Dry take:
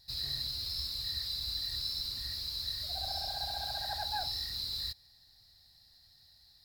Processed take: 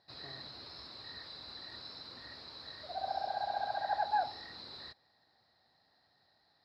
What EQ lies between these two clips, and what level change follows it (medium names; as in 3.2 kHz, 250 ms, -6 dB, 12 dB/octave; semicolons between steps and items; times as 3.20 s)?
high-pass 320 Hz 12 dB/octave; low-pass 1.3 kHz 12 dB/octave; +8.5 dB